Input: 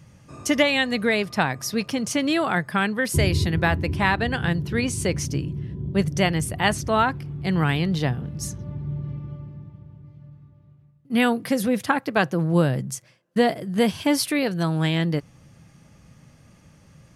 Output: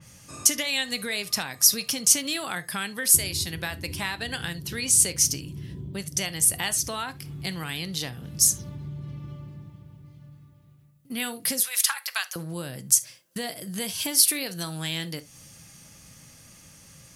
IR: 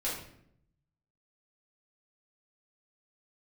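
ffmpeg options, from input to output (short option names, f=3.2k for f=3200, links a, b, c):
-filter_complex "[0:a]asettb=1/sr,asplit=3[a][b][c];[a]atrim=end=11.604[d];[b]atrim=start=11.6:end=12.36,asetpts=PTS-STARTPTS,afade=t=in:d=0.004:c=qsin,afade=t=out:st=0.756:d=0.004:c=qsin,highpass=f=1k:w=0.5412,highpass=f=1k:w=1.3066[e];[c]atrim=start=12.356[f];[d][e]acrossfade=d=0.004:c1=hsin:c2=qsin[g];[g][f]acrossfade=d=0.004:c1=qsin:c2=hsin,acompressor=threshold=-30dB:ratio=6,crystalizer=i=6.5:c=0,asplit=2[h][i];[1:a]atrim=start_sample=2205,atrim=end_sample=3528[j];[i][j]afir=irnorm=-1:irlink=0,volume=-15.5dB[k];[h][k]amix=inputs=2:normalize=0,adynamicequalizer=threshold=0.0126:dfrequency=3200:dqfactor=0.7:tfrequency=3200:tqfactor=0.7:attack=5:release=100:ratio=0.375:range=2.5:mode=boostabove:tftype=highshelf,volume=-4dB"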